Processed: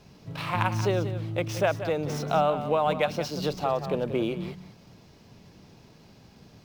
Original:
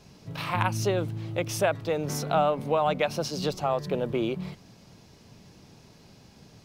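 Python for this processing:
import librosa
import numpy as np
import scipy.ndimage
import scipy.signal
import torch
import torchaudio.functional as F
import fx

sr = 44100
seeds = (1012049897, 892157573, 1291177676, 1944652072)

y = scipy.ndimage.median_filter(x, 5, mode='constant')
y = y + 10.0 ** (-11.0 / 20.0) * np.pad(y, (int(182 * sr / 1000.0), 0))[:len(y)]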